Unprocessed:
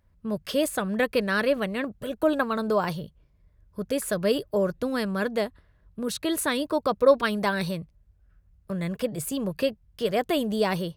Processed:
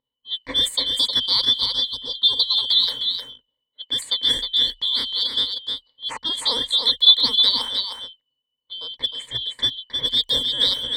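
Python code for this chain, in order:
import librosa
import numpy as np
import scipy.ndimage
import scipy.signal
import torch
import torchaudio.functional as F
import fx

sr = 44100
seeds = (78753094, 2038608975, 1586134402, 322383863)

y = fx.band_shuffle(x, sr, order='3412')
y = fx.ripple_eq(y, sr, per_octave=1.0, db=13)
y = fx.env_lowpass(y, sr, base_hz=820.0, full_db=-21.5)
y = fx.high_shelf(y, sr, hz=9100.0, db=-3.5)
y = y + 10.0 ** (-5.5 / 20.0) * np.pad(y, (int(310 * sr / 1000.0), 0))[:len(y)]
y = y * librosa.db_to_amplitude(2.5)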